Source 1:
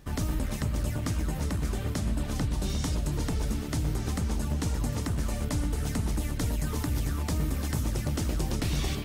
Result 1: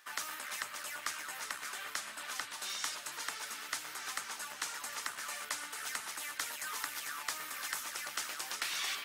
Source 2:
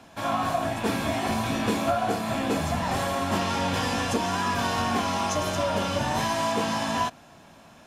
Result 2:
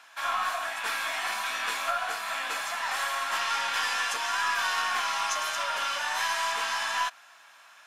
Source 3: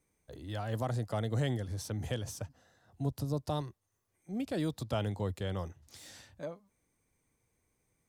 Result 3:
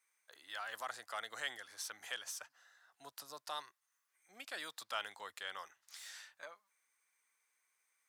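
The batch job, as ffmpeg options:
-af "highpass=f=1.4k:t=q:w=1.6,aeval=exprs='0.168*(cos(1*acos(clip(val(0)/0.168,-1,1)))-cos(1*PI/2))+0.00422*(cos(4*acos(clip(val(0)/0.168,-1,1)))-cos(4*PI/2))':c=same"

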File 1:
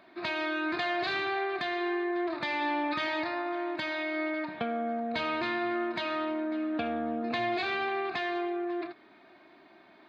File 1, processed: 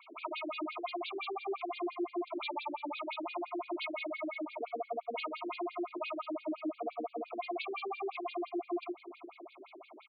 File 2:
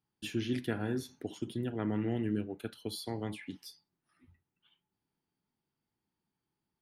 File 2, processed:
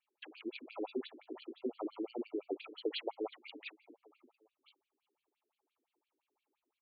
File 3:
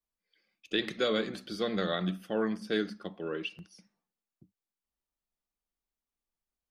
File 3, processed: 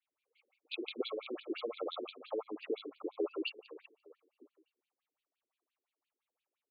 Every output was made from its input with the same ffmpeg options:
-filter_complex "[0:a]alimiter=level_in=2dB:limit=-24dB:level=0:latency=1:release=73,volume=-2dB,asuperstop=centerf=1700:order=20:qfactor=2.1,bass=f=250:g=-14,treble=f=4k:g=-9,asplit=2[a][b];[b]adelay=400,lowpass=f=2.2k:p=1,volume=-20.5dB,asplit=2[c][d];[d]adelay=400,lowpass=f=2.2k:p=1,volume=0.4,asplit=2[e][f];[f]adelay=400,lowpass=f=2.2k:p=1,volume=0.4[g];[a][c][e][g]amix=inputs=4:normalize=0,acrusher=samples=6:mix=1:aa=0.000001,acompressor=threshold=-41dB:ratio=6,afftfilt=real='re*between(b*sr/1024,310*pow(3400/310,0.5+0.5*sin(2*PI*5.8*pts/sr))/1.41,310*pow(3400/310,0.5+0.5*sin(2*PI*5.8*pts/sr))*1.41)':imag='im*between(b*sr/1024,310*pow(3400/310,0.5+0.5*sin(2*PI*5.8*pts/sr))/1.41,310*pow(3400/310,0.5+0.5*sin(2*PI*5.8*pts/sr))*1.41)':win_size=1024:overlap=0.75,volume=12.5dB"

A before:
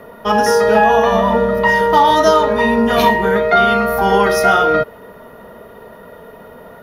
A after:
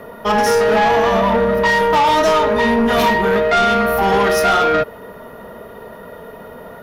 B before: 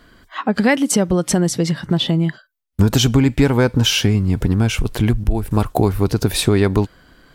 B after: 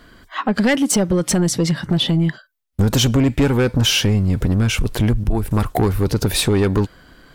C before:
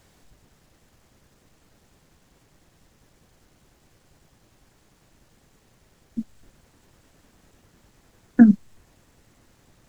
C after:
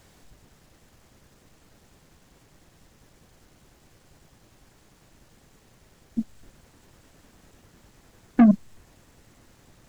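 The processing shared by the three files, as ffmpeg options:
-af "asoftclip=type=tanh:threshold=-12.5dB,volume=2.5dB"

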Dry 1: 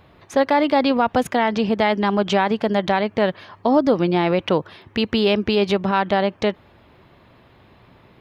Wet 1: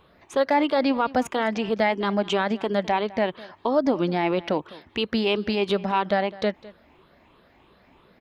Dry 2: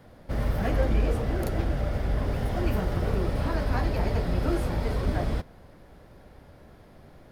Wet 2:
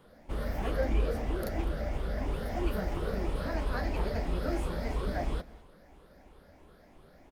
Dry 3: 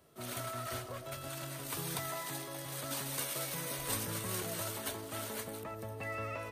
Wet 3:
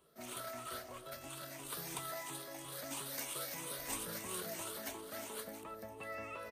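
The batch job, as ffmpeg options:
-af "afftfilt=real='re*pow(10,8/40*sin(2*PI*(0.66*log(max(b,1)*sr/1024/100)/log(2)-(3)*(pts-256)/sr)))':imag='im*pow(10,8/40*sin(2*PI*(0.66*log(max(b,1)*sr/1024/100)/log(2)-(3)*(pts-256)/sr)))':win_size=1024:overlap=0.75,equalizer=f=110:t=o:w=0.65:g=-12.5,aecho=1:1:206:0.1,volume=-5dB"

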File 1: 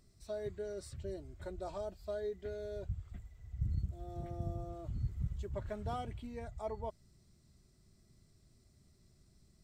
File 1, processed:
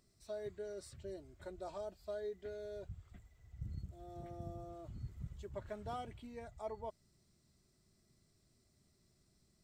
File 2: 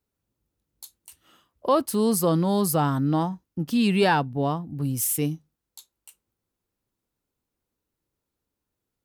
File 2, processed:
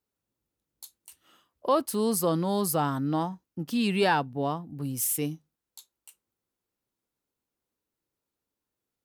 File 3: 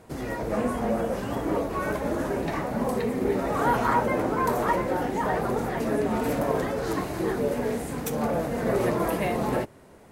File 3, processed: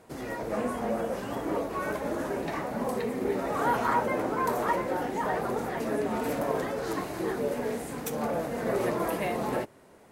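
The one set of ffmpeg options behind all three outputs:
-af "lowshelf=f=140:g=-9.5,volume=-2.5dB"

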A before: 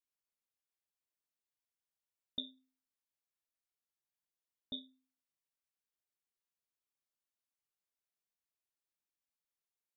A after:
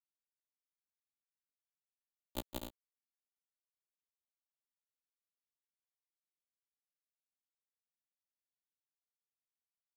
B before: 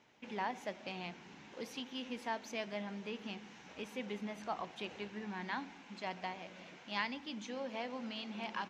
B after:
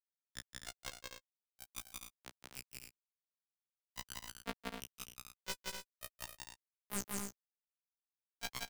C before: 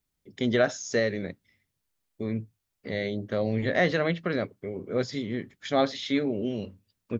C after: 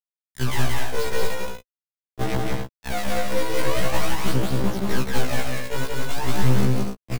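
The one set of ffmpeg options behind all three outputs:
-filter_complex "[0:a]highpass=f=67:w=0.5412,highpass=f=67:w=1.3066,equalizer=f=90:t=o:w=0.95:g=-4,acrossover=split=550|3300[a][b][c];[a]acompressor=threshold=-30dB:ratio=4[d];[b]acompressor=threshold=-44dB:ratio=4[e];[c]acompressor=threshold=-55dB:ratio=4[f];[d][e][f]amix=inputs=3:normalize=0,aeval=exprs='0.15*(cos(1*acos(clip(val(0)/0.15,-1,1)))-cos(1*PI/2))+0.0422*(cos(8*acos(clip(val(0)/0.15,-1,1)))-cos(8*PI/2))':c=same,asplit=2[g][h];[h]asoftclip=type=tanh:threshold=-23dB,volume=-8.5dB[i];[g][i]amix=inputs=2:normalize=0,acrusher=bits=3:mix=0:aa=0.000001,aphaser=in_gain=1:out_gain=1:delay=2.1:decay=0.67:speed=0.44:type=sinusoidal,acrossover=split=180[j][k];[j]acrusher=bits=2:mode=log:mix=0:aa=0.000001[l];[k]asoftclip=type=hard:threshold=-21dB[m];[l][m]amix=inputs=2:normalize=0,aecho=1:1:177.8|247.8|282.8:0.794|0.447|0.316,afftfilt=real='re*1.73*eq(mod(b,3),0)':imag='im*1.73*eq(mod(b,3),0)':win_size=2048:overlap=0.75"

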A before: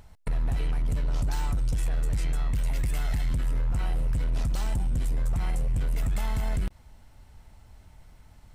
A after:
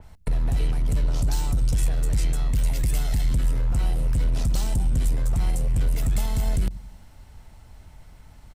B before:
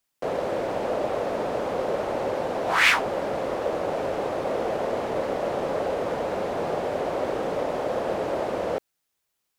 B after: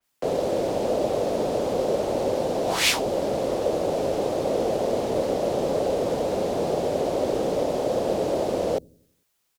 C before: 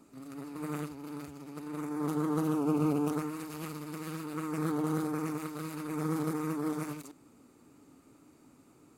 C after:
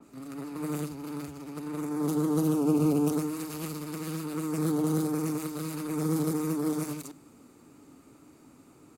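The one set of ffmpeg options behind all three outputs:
-filter_complex "[0:a]acrossover=split=290|750|3000[a][b][c][d];[a]aecho=1:1:89|178|267|356|445:0.2|0.0998|0.0499|0.0249|0.0125[e];[c]acompressor=threshold=-51dB:ratio=5[f];[e][b][f][d]amix=inputs=4:normalize=0,adynamicequalizer=threshold=0.00282:dfrequency=3400:dqfactor=0.7:tfrequency=3400:tqfactor=0.7:attack=5:release=100:ratio=0.375:range=2:mode=boostabove:tftype=highshelf,volume=4.5dB"

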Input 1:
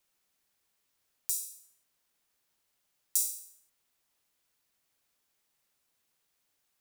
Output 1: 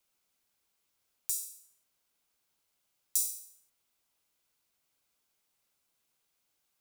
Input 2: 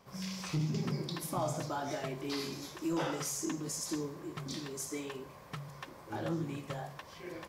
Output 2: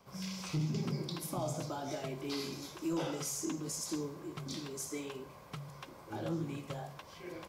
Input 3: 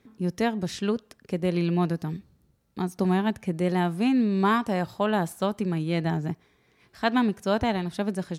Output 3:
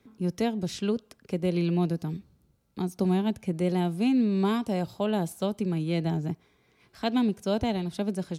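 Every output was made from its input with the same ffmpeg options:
-filter_complex "[0:a]bandreject=f=1.8k:w=10,acrossover=split=350|780|2100[a][b][c][d];[c]acompressor=threshold=-49dB:ratio=6[e];[a][b][e][d]amix=inputs=4:normalize=0,volume=-1dB"

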